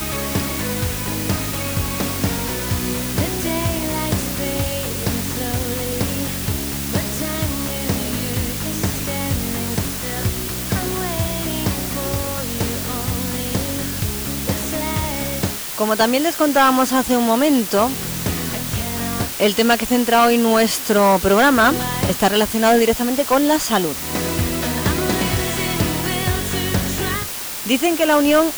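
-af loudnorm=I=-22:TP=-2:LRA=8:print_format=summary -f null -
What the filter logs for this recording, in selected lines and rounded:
Input Integrated:    -19.1 LUFS
Input True Peak:      -5.1 dBTP
Input LRA:             6.7 LU
Input Threshold:     -29.1 LUFS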